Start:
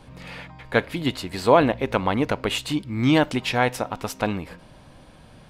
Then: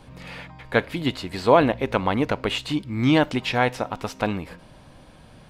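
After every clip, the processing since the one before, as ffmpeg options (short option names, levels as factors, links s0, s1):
-filter_complex "[0:a]acrossover=split=5900[s0][s1];[s1]acompressor=threshold=0.00447:ratio=4:attack=1:release=60[s2];[s0][s2]amix=inputs=2:normalize=0"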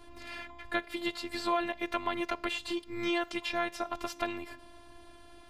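-filter_complex "[0:a]afftfilt=real='hypot(re,im)*cos(PI*b)':imag='0':win_size=512:overlap=0.75,acrossover=split=550|1200[s0][s1][s2];[s0]acompressor=threshold=0.0141:ratio=4[s3];[s1]acompressor=threshold=0.0141:ratio=4[s4];[s2]acompressor=threshold=0.0224:ratio=4[s5];[s3][s4][s5]amix=inputs=3:normalize=0"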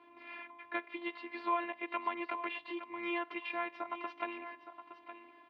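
-af "highpass=300,equalizer=f=310:t=q:w=4:g=6,equalizer=f=1000:t=q:w=4:g=8,equalizer=f=2300:t=q:w=4:g=8,lowpass=f=3100:w=0.5412,lowpass=f=3100:w=1.3066,aecho=1:1:866:0.266,volume=0.398"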